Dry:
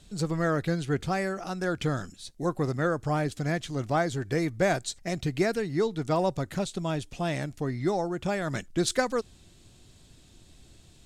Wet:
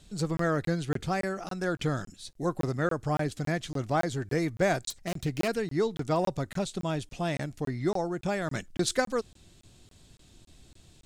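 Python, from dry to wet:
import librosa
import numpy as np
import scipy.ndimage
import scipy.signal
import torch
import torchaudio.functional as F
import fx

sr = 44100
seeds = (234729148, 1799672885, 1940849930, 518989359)

y = fx.self_delay(x, sr, depth_ms=0.27, at=(4.9, 5.48))
y = fx.buffer_crackle(y, sr, first_s=0.37, period_s=0.28, block=1024, kind='zero')
y = y * 10.0 ** (-1.0 / 20.0)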